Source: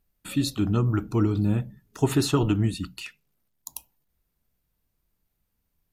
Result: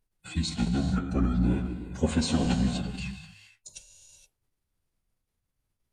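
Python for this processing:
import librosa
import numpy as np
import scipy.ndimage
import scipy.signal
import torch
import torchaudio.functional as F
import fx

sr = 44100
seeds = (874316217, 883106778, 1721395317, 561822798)

y = fx.hum_notches(x, sr, base_hz=60, count=3)
y = fx.rev_gated(y, sr, seeds[0], gate_ms=500, shape='flat', drr_db=5.5)
y = fx.pitch_keep_formants(y, sr, semitones=-9.5)
y = y * librosa.db_to_amplitude(-2.5)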